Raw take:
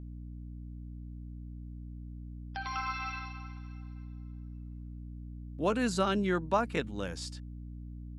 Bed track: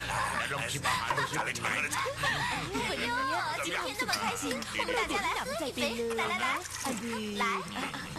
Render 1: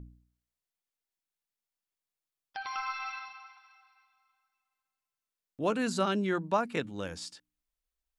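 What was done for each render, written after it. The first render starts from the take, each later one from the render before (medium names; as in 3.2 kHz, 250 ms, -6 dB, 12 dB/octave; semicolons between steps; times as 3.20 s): de-hum 60 Hz, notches 5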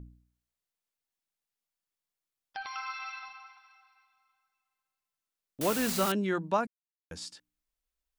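2.66–3.23 s: high-pass 1.2 kHz 6 dB/octave; 5.61–6.12 s: word length cut 6-bit, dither triangular; 6.67–7.11 s: mute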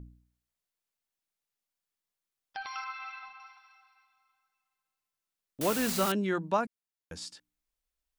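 2.84–3.40 s: distance through air 190 m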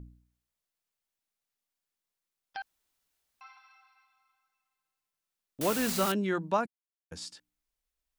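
2.62–3.41 s: room tone; 5.72–6.15 s: block-companded coder 5-bit; 6.65–7.12 s: level held to a coarse grid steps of 21 dB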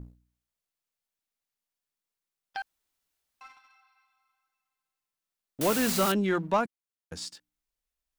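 waveshaping leveller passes 1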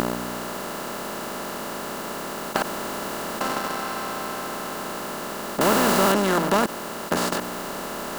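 spectral levelling over time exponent 0.2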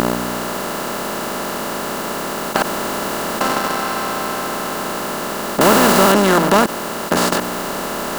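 trim +8 dB; peak limiter -2 dBFS, peak gain reduction 2.5 dB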